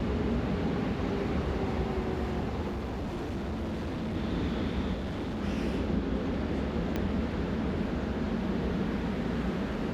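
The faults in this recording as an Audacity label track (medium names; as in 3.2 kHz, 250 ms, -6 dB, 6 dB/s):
2.690000	4.170000	clipped -30.5 dBFS
4.940000	5.430000	clipped -31 dBFS
6.960000	6.960000	pop -18 dBFS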